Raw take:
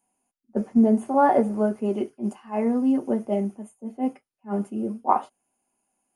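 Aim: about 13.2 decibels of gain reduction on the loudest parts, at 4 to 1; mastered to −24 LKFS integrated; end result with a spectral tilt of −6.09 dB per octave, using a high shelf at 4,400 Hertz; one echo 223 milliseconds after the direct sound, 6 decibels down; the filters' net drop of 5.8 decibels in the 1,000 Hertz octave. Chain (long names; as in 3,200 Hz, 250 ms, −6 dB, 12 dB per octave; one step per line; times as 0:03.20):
parametric band 1,000 Hz −8 dB
high-shelf EQ 4,400 Hz +5.5 dB
downward compressor 4 to 1, threshold −30 dBFS
single-tap delay 223 ms −6 dB
level +9.5 dB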